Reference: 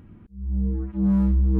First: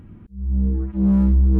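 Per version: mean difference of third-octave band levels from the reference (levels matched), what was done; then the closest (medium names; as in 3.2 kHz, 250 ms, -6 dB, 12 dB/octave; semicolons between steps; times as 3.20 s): 1.0 dB: bass shelf 230 Hz +3.5 dB; in parallel at -10 dB: one-sided clip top -31 dBFS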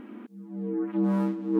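7.0 dB: in parallel at +2 dB: compression, threshold -33 dBFS, peak gain reduction 15 dB; on the sum: brick-wall FIR high-pass 210 Hz; trim +4 dB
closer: first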